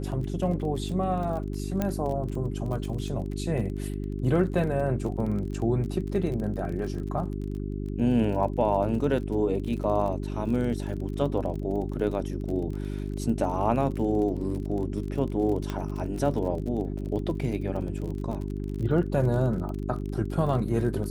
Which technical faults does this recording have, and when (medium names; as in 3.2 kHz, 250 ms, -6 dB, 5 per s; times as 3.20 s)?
crackle 32 per s -34 dBFS
hum 50 Hz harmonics 8 -32 dBFS
1.82 s: pop -14 dBFS
15.70 s: pop -18 dBFS